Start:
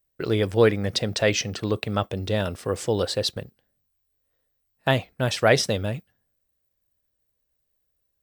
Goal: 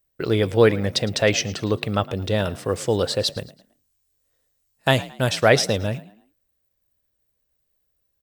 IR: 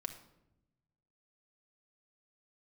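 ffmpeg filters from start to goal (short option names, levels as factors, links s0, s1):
-filter_complex "[0:a]asettb=1/sr,asplit=3[s0][s1][s2];[s0]atrim=end=3.374[s3];[s1]atrim=start=3.37:end=5.29,asetpts=PTS-STARTPTS,afade=t=in:d=0.004:c=qsin,afade=t=out:st=1.916:d=0.004:c=qsin,equalizer=f=8100:t=o:w=1.4:g=10.5[s4];[s2]atrim=start=5.286[s5];[s3][s4]acrossfade=d=0.004:c1=hsin:c2=qsin[s6];[s6][s5]acrossfade=d=0.004:c1=qsin:c2=hsin,asplit=4[s7][s8][s9][s10];[s8]adelay=110,afreqshift=45,volume=0.112[s11];[s9]adelay=220,afreqshift=90,volume=0.0394[s12];[s10]adelay=330,afreqshift=135,volume=0.0138[s13];[s7][s11][s12][s13]amix=inputs=4:normalize=0,volume=1.33"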